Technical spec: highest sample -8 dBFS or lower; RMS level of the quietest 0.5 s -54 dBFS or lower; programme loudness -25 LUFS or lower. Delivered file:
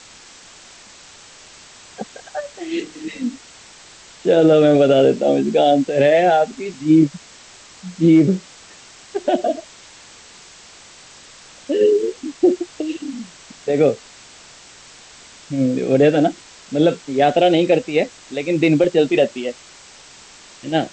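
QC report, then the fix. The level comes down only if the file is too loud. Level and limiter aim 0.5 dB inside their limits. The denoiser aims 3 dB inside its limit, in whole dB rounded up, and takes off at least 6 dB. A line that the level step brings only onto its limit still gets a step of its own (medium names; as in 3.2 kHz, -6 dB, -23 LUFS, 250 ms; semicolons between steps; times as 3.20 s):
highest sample -4.5 dBFS: fail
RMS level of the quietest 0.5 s -44 dBFS: fail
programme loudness -17.5 LUFS: fail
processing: noise reduction 6 dB, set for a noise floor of -44 dBFS; trim -8 dB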